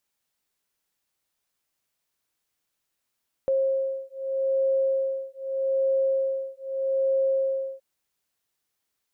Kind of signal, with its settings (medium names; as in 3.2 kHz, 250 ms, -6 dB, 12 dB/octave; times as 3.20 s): beating tones 536 Hz, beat 0.81 Hz, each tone -25.5 dBFS 4.32 s